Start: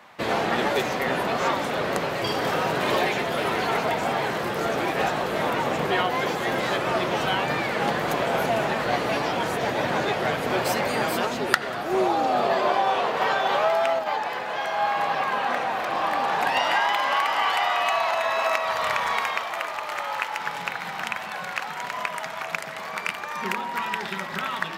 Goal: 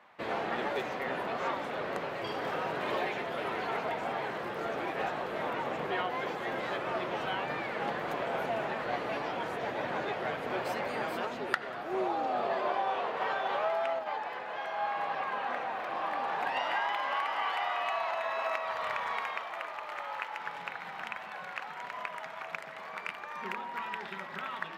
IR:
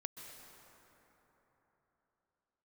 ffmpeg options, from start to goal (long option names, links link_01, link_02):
-af "bass=frequency=250:gain=-5,treble=frequency=4000:gain=-11,volume=-9dB"